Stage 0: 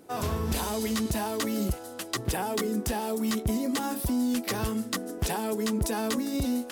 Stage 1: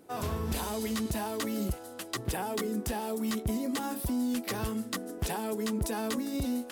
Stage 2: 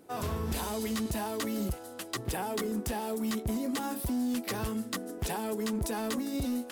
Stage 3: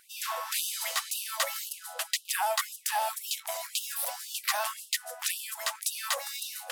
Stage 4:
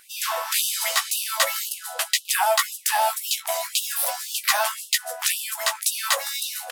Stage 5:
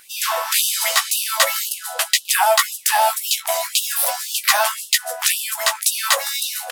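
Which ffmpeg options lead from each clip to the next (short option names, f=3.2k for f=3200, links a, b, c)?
-af "equalizer=f=5.8k:t=o:w=0.77:g=-2,volume=-3.5dB"
-af "volume=27dB,asoftclip=hard,volume=-27dB"
-af "afftfilt=real='re*gte(b*sr/1024,510*pow(2700/510,0.5+0.5*sin(2*PI*1.9*pts/sr)))':imag='im*gte(b*sr/1024,510*pow(2700/510,0.5+0.5*sin(2*PI*1.9*pts/sr)))':win_size=1024:overlap=0.75,volume=8.5dB"
-filter_complex "[0:a]asplit=2[a][b];[b]adelay=15,volume=-7dB[c];[a][c]amix=inputs=2:normalize=0,volume=7.5dB"
-af "acrusher=bits=10:mix=0:aa=0.000001,volume=5dB"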